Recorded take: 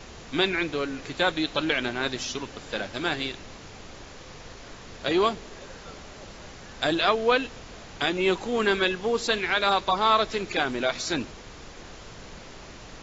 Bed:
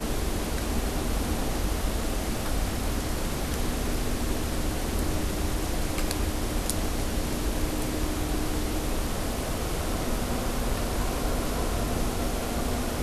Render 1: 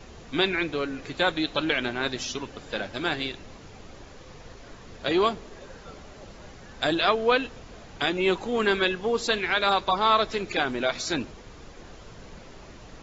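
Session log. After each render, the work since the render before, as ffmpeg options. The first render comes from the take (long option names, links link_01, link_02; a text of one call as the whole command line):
ffmpeg -i in.wav -af "afftdn=noise_reduction=6:noise_floor=-44" out.wav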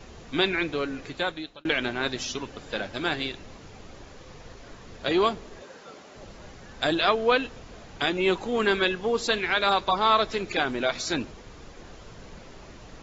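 ffmpeg -i in.wav -filter_complex "[0:a]asettb=1/sr,asplit=3[link_01][link_02][link_03];[link_01]atrim=end=5.624[link_04];[link_02]atrim=start=5.62:end=6.15,asetpts=PTS-STARTPTS,afade=type=in:duration=0.004:curve=qsin,afade=type=out:start_time=0.526:duration=0.004:curve=qsin,highpass=240[link_05];[link_03]atrim=start=6.146[link_06];[link_04][link_05]acrossfade=duration=0.004:curve1=hsin:curve2=qsin[link_07];[link_07][link_06]acrossfade=duration=0.004:curve1=qsin:curve2=hsin,asplit=2[link_08][link_09];[link_08]atrim=end=1.65,asetpts=PTS-STARTPTS,afade=type=out:start_time=0.97:duration=0.68[link_10];[link_09]atrim=start=1.65,asetpts=PTS-STARTPTS,afade=type=in:duration=0.004:curve=hsin[link_11];[link_10][link_11]concat=n=2:v=0:a=1" out.wav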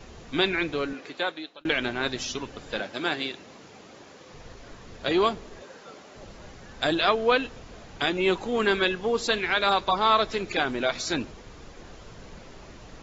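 ffmpeg -i in.wav -filter_complex "[0:a]asettb=1/sr,asplit=3[link_01][link_02][link_03];[link_01]atrim=end=0.934[link_04];[link_02]atrim=start=0.93:end=1.61,asetpts=PTS-STARTPTS,afade=type=in:duration=0.004:curve=qsin,afade=type=out:start_time=0.676:duration=0.004:curve=qsin,highpass=280,lowpass=6300[link_05];[link_03]atrim=start=1.606[link_06];[link_04][link_05]acrossfade=duration=0.004:curve1=hsin:curve2=qsin[link_07];[link_07][link_06]acrossfade=duration=0.004:curve1=qsin:curve2=hsin,asettb=1/sr,asplit=3[link_08][link_09][link_10];[link_08]atrim=end=2.804[link_11];[link_09]atrim=start=2.8:end=4.33,asetpts=PTS-STARTPTS,afade=type=in:duration=0.004:curve=qsin,afade=type=out:start_time=1.526:duration=0.004:curve=qsin,highpass=180[link_12];[link_10]atrim=start=4.326[link_13];[link_11][link_12]acrossfade=duration=0.004:curve1=hsin:curve2=qsin[link_14];[link_14][link_13]acrossfade=duration=0.004:curve1=qsin:curve2=hsin" out.wav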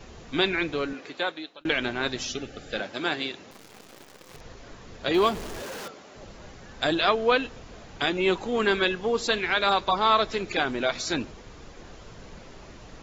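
ffmpeg -i in.wav -filter_complex "[0:a]asettb=1/sr,asplit=3[link_01][link_02][link_03];[link_01]atrim=end=2.294[link_04];[link_02]atrim=start=2.29:end=2.78,asetpts=PTS-STARTPTS,afade=type=in:duration=0.004:curve=qsin,afade=type=out:start_time=0.486:duration=0.004:curve=qsin,asuperstop=centerf=1000:order=8:qfactor=3.1[link_05];[link_03]atrim=start=2.776[link_06];[link_04][link_05]acrossfade=duration=0.004:curve1=hsin:curve2=qsin[link_07];[link_07][link_06]acrossfade=duration=0.004:curve1=qsin:curve2=hsin,asettb=1/sr,asplit=3[link_08][link_09][link_10];[link_08]atrim=end=3.514[link_11];[link_09]atrim=start=3.51:end=4.41,asetpts=PTS-STARTPTS,afade=type=in:duration=0.004:curve=qsin,afade=type=out:start_time=0.896:duration=0.004:curve=qsin,acrusher=bits=8:dc=4:mix=0:aa=0.000001[link_12];[link_10]atrim=start=4.406[link_13];[link_11][link_12]acrossfade=duration=0.004:curve1=hsin:curve2=qsin[link_14];[link_14][link_13]acrossfade=duration=0.004:curve1=qsin:curve2=hsin,asettb=1/sr,asplit=3[link_15][link_16][link_17];[link_15]atrim=end=5.144[link_18];[link_16]atrim=start=5.14:end=5.88,asetpts=PTS-STARTPTS,afade=type=in:duration=0.004:curve=qsin,afade=type=out:start_time=0.736:duration=0.004:curve=qsin,aeval=exprs='val(0)+0.5*0.0211*sgn(val(0))':channel_layout=same[link_19];[link_17]atrim=start=5.876[link_20];[link_18][link_19]acrossfade=duration=0.004:curve1=hsin:curve2=qsin[link_21];[link_21][link_20]acrossfade=duration=0.004:curve1=qsin:curve2=hsin" out.wav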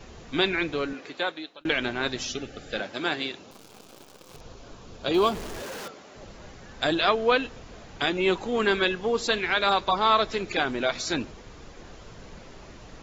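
ffmpeg -i in.wav -filter_complex "[0:a]asettb=1/sr,asplit=3[link_01][link_02][link_03];[link_01]atrim=end=3.384[link_04];[link_02]atrim=start=3.38:end=5.32,asetpts=PTS-STARTPTS,afade=type=in:duration=0.004:curve=qsin,afade=type=out:start_time=1.936:duration=0.004:curve=qsin,equalizer=frequency=1900:width=3.6:gain=-10[link_05];[link_03]atrim=start=5.316[link_06];[link_04][link_05]acrossfade=duration=0.004:curve1=hsin:curve2=qsin[link_07];[link_07][link_06]acrossfade=duration=0.004:curve1=qsin:curve2=hsin" out.wav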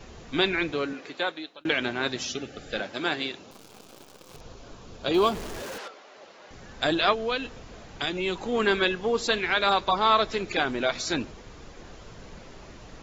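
ffmpeg -i in.wav -filter_complex "[0:a]asettb=1/sr,asplit=3[link_01][link_02][link_03];[link_01]atrim=end=0.724[link_04];[link_02]atrim=start=0.72:end=2.58,asetpts=PTS-STARTPTS,afade=type=in:duration=0.004:curve=qsin,afade=type=out:start_time=1.856:duration=0.004:curve=qsin,highpass=85[link_05];[link_03]atrim=start=2.576[link_06];[link_04][link_05]acrossfade=duration=0.004:curve1=hsin:curve2=qsin[link_07];[link_07][link_06]acrossfade=duration=0.004:curve1=qsin:curve2=hsin,asettb=1/sr,asplit=3[link_08][link_09][link_10];[link_08]atrim=end=5.784[link_11];[link_09]atrim=start=5.78:end=6.51,asetpts=PTS-STARTPTS,afade=type=in:duration=0.004:curve=qsin,afade=type=out:start_time=0.726:duration=0.004:curve=qsin,highpass=470,lowpass=5200[link_12];[link_10]atrim=start=6.506[link_13];[link_11][link_12]acrossfade=duration=0.004:curve1=hsin:curve2=qsin[link_14];[link_14][link_13]acrossfade=duration=0.004:curve1=qsin:curve2=hsin,asettb=1/sr,asplit=3[link_15][link_16][link_17];[link_15]atrim=end=7.134[link_18];[link_16]atrim=start=7.13:end=8.41,asetpts=PTS-STARTPTS,afade=type=in:duration=0.004:curve=qsin,afade=type=out:start_time=1.276:duration=0.004:curve=qsin,acrossover=split=160|3000[link_19][link_20][link_21];[link_20]acompressor=threshold=-31dB:ratio=2:attack=3.2:release=140:knee=2.83:detection=peak[link_22];[link_19][link_22][link_21]amix=inputs=3:normalize=0[link_23];[link_17]atrim=start=8.406[link_24];[link_18][link_23]acrossfade=duration=0.004:curve1=hsin:curve2=qsin[link_25];[link_25][link_24]acrossfade=duration=0.004:curve1=qsin:curve2=hsin" out.wav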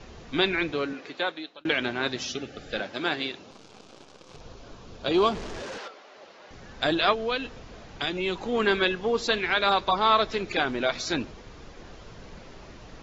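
ffmpeg -i in.wav -af "lowpass=frequency=6500:width=0.5412,lowpass=frequency=6500:width=1.3066" out.wav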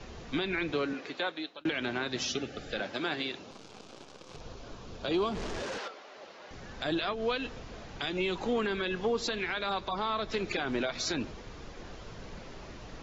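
ffmpeg -i in.wav -filter_complex "[0:a]acrossover=split=270[link_01][link_02];[link_02]acompressor=threshold=-24dB:ratio=6[link_03];[link_01][link_03]amix=inputs=2:normalize=0,alimiter=limit=-21.5dB:level=0:latency=1:release=139" out.wav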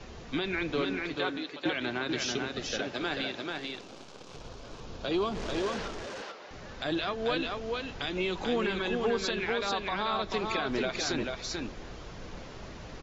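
ffmpeg -i in.wav -af "aecho=1:1:439:0.668" out.wav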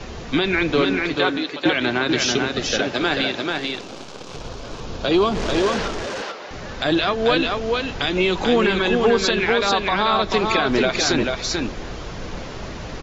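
ffmpeg -i in.wav -af "volume=12dB" out.wav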